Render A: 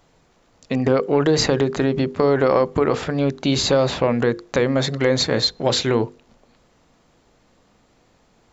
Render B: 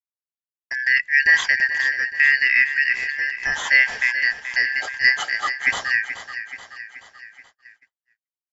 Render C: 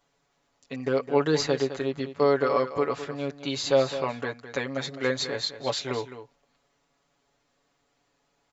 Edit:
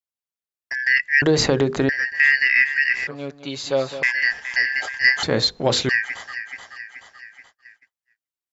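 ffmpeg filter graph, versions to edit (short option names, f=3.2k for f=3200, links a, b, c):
-filter_complex "[0:a]asplit=2[a][b];[1:a]asplit=4[c][d][e][f];[c]atrim=end=1.222[g];[a]atrim=start=1.218:end=1.892[h];[d]atrim=start=1.888:end=3.072[i];[2:a]atrim=start=3.068:end=4.032[j];[e]atrim=start=4.028:end=5.232[k];[b]atrim=start=5.228:end=5.892[l];[f]atrim=start=5.888[m];[g][h]acrossfade=d=0.004:c1=hsin:c2=hsin[n];[n][i]acrossfade=d=0.004:c1=hsin:c2=hsin[o];[o][j]acrossfade=d=0.004:c1=hsin:c2=hsin[p];[p][k]acrossfade=d=0.004:c1=hsin:c2=hsin[q];[q][l]acrossfade=d=0.004:c1=hsin:c2=hsin[r];[r][m]acrossfade=d=0.004:c1=hsin:c2=hsin"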